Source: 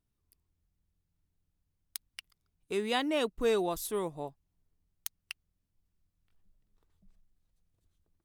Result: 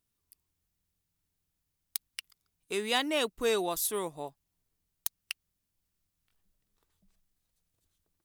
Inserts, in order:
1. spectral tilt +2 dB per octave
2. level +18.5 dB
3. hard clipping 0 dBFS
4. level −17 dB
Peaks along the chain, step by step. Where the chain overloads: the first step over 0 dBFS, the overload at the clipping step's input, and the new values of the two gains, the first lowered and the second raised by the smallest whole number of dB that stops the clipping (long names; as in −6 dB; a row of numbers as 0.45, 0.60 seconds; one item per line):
−10.5, +8.0, 0.0, −17.0 dBFS
step 2, 8.0 dB
step 2 +10.5 dB, step 4 −9 dB